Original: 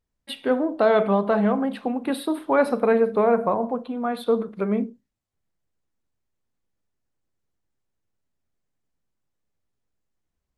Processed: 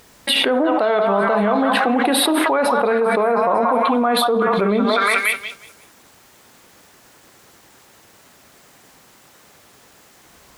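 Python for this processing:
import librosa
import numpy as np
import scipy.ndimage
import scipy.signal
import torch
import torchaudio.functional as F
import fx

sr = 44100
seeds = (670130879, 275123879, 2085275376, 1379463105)

p1 = fx.highpass(x, sr, hz=450.0, slope=6)
p2 = p1 + fx.echo_stepped(p1, sr, ms=180, hz=1000.0, octaves=0.7, feedback_pct=70, wet_db=-3, dry=0)
y = fx.env_flatten(p2, sr, amount_pct=100)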